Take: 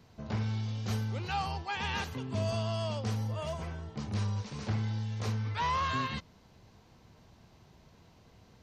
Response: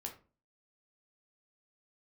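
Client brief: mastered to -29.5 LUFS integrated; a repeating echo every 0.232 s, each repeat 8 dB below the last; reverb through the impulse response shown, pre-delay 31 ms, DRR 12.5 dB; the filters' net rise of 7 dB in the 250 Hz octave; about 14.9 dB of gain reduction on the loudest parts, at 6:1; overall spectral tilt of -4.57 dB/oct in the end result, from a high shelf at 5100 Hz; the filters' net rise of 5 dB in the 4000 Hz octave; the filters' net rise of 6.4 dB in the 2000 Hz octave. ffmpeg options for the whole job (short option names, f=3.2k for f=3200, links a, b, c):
-filter_complex "[0:a]equalizer=f=250:t=o:g=8.5,equalizer=f=2k:t=o:g=7.5,equalizer=f=4k:t=o:g=5,highshelf=f=5.1k:g=-3.5,acompressor=threshold=-42dB:ratio=6,aecho=1:1:232|464|696|928|1160:0.398|0.159|0.0637|0.0255|0.0102,asplit=2[a][b];[1:a]atrim=start_sample=2205,adelay=31[c];[b][c]afir=irnorm=-1:irlink=0,volume=-10dB[d];[a][d]amix=inputs=2:normalize=0,volume=14.5dB"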